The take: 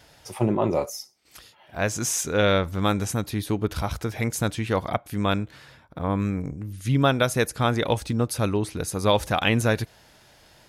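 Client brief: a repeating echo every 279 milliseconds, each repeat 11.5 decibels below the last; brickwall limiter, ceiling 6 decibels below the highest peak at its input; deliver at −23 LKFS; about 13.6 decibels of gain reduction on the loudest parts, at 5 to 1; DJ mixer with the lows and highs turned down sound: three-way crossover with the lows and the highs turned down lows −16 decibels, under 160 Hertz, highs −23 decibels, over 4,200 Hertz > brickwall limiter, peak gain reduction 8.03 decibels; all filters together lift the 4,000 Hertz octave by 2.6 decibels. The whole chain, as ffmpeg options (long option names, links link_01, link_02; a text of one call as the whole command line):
ffmpeg -i in.wav -filter_complex "[0:a]equalizer=frequency=4000:width_type=o:gain=7,acompressor=threshold=-30dB:ratio=5,alimiter=limit=-22dB:level=0:latency=1,acrossover=split=160 4200:gain=0.158 1 0.0708[link_01][link_02][link_03];[link_01][link_02][link_03]amix=inputs=3:normalize=0,aecho=1:1:279|558|837:0.266|0.0718|0.0194,volume=17.5dB,alimiter=limit=-10dB:level=0:latency=1" out.wav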